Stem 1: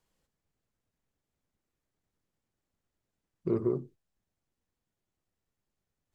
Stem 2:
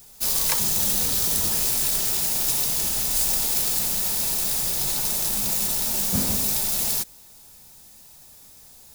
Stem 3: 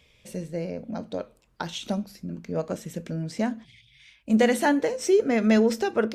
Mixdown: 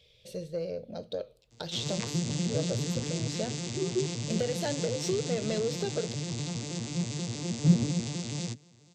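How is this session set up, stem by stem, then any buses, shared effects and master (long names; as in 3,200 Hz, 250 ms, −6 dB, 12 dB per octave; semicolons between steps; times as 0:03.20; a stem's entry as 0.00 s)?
−3.0 dB, 0.30 s, no send, three sine waves on the formant tracks
−1.0 dB, 1.50 s, no send, vocoder with an arpeggio as carrier major triad, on A#2, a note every 80 ms; flat-topped bell 1,000 Hz −8.5 dB
−5.5 dB, 0.00 s, no send, octave-band graphic EQ 125/250/500/1,000/2,000/4,000/8,000 Hz +6/−11/+11/−10/−5/+12/−4 dB; downward compressor, threshold −22 dBFS, peak gain reduction 11 dB; soft clipping −16 dBFS, distortion −23 dB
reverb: not used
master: no processing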